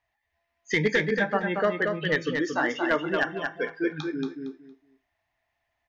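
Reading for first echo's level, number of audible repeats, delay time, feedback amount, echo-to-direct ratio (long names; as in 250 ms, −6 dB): −5.0 dB, 3, 230 ms, 20%, −5.0 dB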